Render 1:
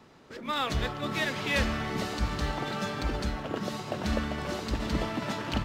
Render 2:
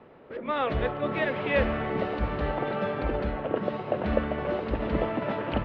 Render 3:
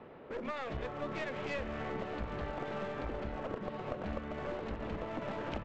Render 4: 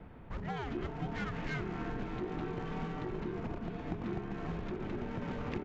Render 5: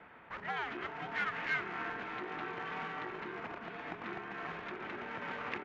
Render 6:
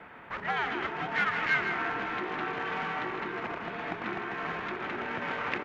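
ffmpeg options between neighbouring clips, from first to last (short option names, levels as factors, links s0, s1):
-af "lowpass=f=2800:w=0.5412,lowpass=f=2800:w=1.3066,equalizer=f=520:w=1.4:g=9.5"
-af "acompressor=threshold=0.02:ratio=6,aresample=16000,aeval=exprs='clip(val(0),-1,0.01)':c=same,aresample=44100"
-af "afreqshift=-420,volume=1.12"
-af "bandpass=f=1800:t=q:w=1.1:csg=0,volume=2.66"
-af "aecho=1:1:158:0.422,volume=2.24"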